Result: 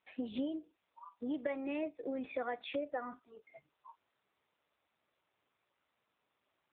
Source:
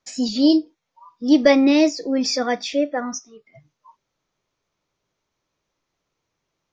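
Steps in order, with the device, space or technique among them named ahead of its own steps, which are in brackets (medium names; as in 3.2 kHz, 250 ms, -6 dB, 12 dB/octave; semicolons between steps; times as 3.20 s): voicemail (band-pass 380–2900 Hz; compression 8:1, threshold -30 dBFS, peak gain reduction 19 dB; trim -3.5 dB; AMR-NB 7.4 kbps 8 kHz)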